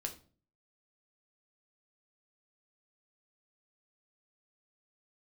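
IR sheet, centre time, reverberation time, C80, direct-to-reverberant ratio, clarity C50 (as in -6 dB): 11 ms, 0.40 s, 17.5 dB, 3.5 dB, 12.5 dB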